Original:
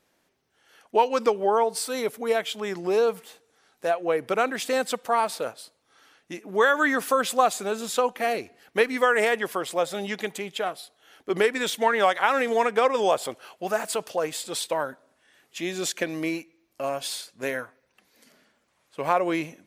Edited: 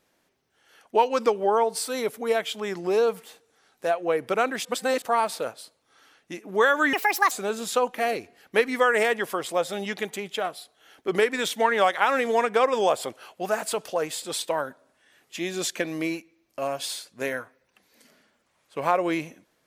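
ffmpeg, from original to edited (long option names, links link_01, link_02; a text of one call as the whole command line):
ffmpeg -i in.wav -filter_complex "[0:a]asplit=5[link_01][link_02][link_03][link_04][link_05];[link_01]atrim=end=4.652[link_06];[link_02]atrim=start=4.648:end=5.022,asetpts=PTS-STARTPTS,areverse[link_07];[link_03]atrim=start=5.018:end=6.934[link_08];[link_04]atrim=start=6.93:end=7.53,asetpts=PTS-STARTPTS,asetrate=69237,aresample=44100[link_09];[link_05]atrim=start=7.526[link_10];[link_06][link_07]acrossfade=duration=0.004:curve1=hsin:curve2=hsin[link_11];[link_11][link_08]acrossfade=duration=0.004:curve1=hsin:curve2=hsin[link_12];[link_12][link_09]acrossfade=duration=0.004:curve1=hsin:curve2=hsin[link_13];[link_13][link_10]acrossfade=duration=0.004:curve1=hsin:curve2=hsin" out.wav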